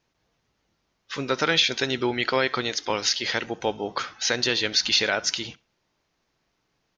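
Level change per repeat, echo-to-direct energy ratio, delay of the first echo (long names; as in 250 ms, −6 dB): repeats not evenly spaced, −23.0 dB, 67 ms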